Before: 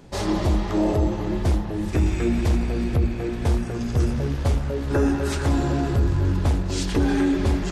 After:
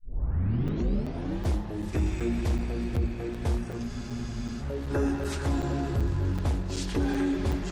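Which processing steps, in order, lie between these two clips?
turntable start at the beginning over 1.47 s
frozen spectrum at 0:03.90, 0.71 s
regular buffer underruns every 0.38 s, samples 256, zero, from 0:00.68
level −6.5 dB

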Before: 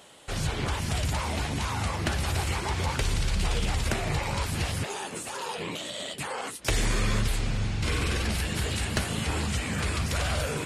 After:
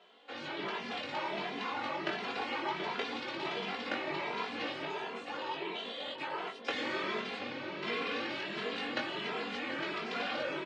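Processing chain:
sub-octave generator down 2 octaves, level 0 dB
high-pass filter 260 Hz 24 dB per octave
on a send: feedback echo with a low-pass in the loop 732 ms, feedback 59%, low-pass 1,100 Hz, level −7 dB
on the sum: automatic gain control gain up to 3.5 dB
low-pass filter 3,900 Hz 24 dB per octave
double-tracking delay 21 ms −4.5 dB
barber-pole flanger 2.6 ms +1.4 Hz
level −5.5 dB

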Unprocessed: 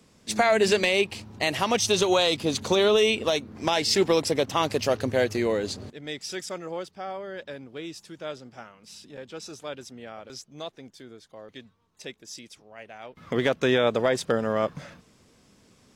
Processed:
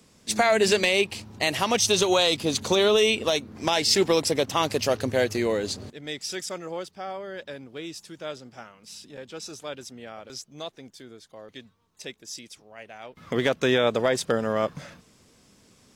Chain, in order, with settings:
high-shelf EQ 4,300 Hz +5 dB

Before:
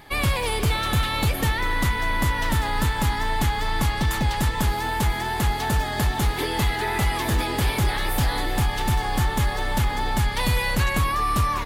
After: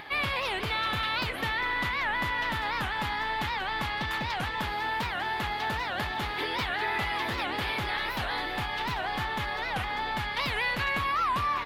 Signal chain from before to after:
spectral tilt +4 dB per octave
upward compression, threshold −29 dBFS
high-frequency loss of the air 360 metres
wow of a warped record 78 rpm, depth 250 cents
level −2 dB

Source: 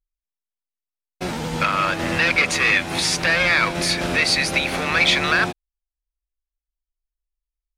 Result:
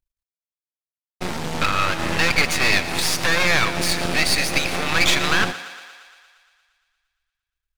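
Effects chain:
half-wave rectification
feedback echo with a high-pass in the loop 116 ms, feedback 69%, high-pass 310 Hz, level −14.5 dB
level +3.5 dB

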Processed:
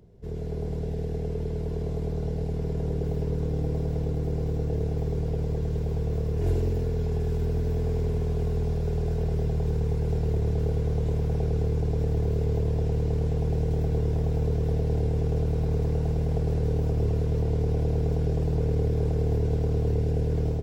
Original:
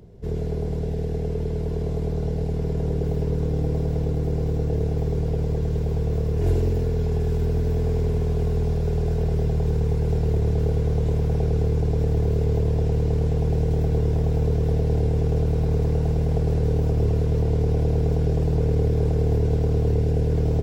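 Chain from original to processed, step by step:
automatic gain control gain up to 3.5 dB
level −7.5 dB

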